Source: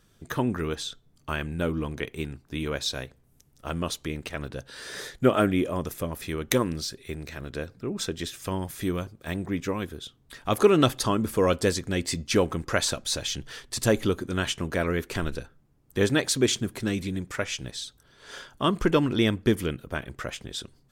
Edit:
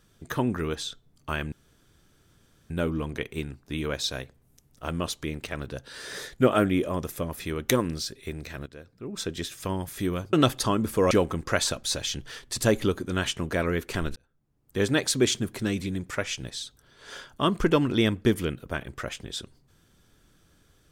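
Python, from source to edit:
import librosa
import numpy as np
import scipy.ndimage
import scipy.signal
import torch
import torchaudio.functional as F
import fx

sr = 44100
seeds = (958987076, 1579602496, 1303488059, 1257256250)

y = fx.edit(x, sr, fx.insert_room_tone(at_s=1.52, length_s=1.18),
    fx.fade_in_from(start_s=7.48, length_s=0.65, curve='qua', floor_db=-13.0),
    fx.cut(start_s=9.15, length_s=1.58),
    fx.cut(start_s=11.51, length_s=0.81),
    fx.fade_in_span(start_s=15.37, length_s=0.84), tone=tone)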